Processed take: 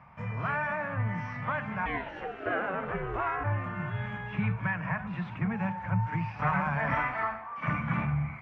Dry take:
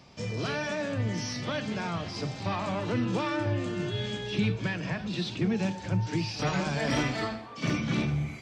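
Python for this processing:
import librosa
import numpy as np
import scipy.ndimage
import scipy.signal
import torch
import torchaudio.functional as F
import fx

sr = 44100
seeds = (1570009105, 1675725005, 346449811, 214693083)

y = fx.curve_eq(x, sr, hz=(170.0, 360.0, 1000.0, 2200.0, 4200.0), db=(0, -16, 9, 1, -29))
y = fx.ring_mod(y, sr, carrier_hz=fx.line((1.85, 980.0), (3.43, 170.0)), at=(1.85, 3.43), fade=0.02)
y = fx.peak_eq(y, sr, hz=130.0, db=-11.5, octaves=1.6, at=(6.94, 7.68))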